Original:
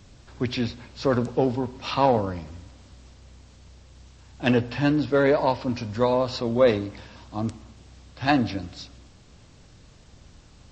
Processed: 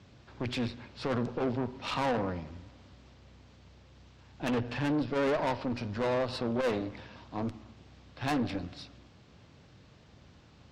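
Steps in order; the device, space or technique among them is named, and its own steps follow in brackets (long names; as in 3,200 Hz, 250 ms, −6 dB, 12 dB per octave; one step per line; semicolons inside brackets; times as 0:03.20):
valve radio (band-pass filter 84–4,000 Hz; tube saturation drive 25 dB, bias 0.6; saturating transformer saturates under 130 Hz)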